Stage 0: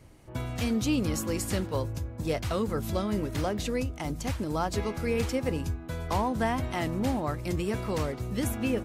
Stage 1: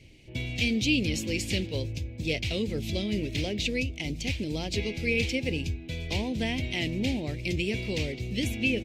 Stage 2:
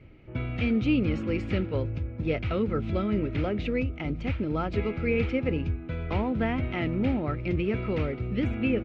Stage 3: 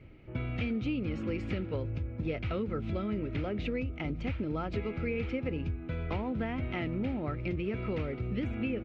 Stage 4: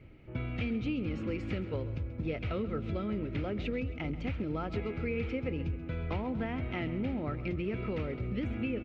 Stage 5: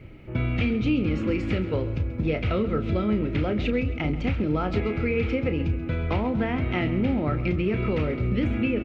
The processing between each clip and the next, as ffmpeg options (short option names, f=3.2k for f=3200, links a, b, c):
-af "firequalizer=gain_entry='entry(400,0);entry(1200,-24);entry(2300,12);entry(10000,-8)':delay=0.05:min_phase=1"
-af "lowpass=f=1.3k:t=q:w=13,volume=2.5dB"
-af "acompressor=threshold=-28dB:ratio=6,volume=-1.5dB"
-af "aecho=1:1:134|268|402|536:0.188|0.0904|0.0434|0.0208,volume=-1dB"
-filter_complex "[0:a]asplit=2[a][b];[b]adelay=33,volume=-10dB[c];[a][c]amix=inputs=2:normalize=0,volume=9dB"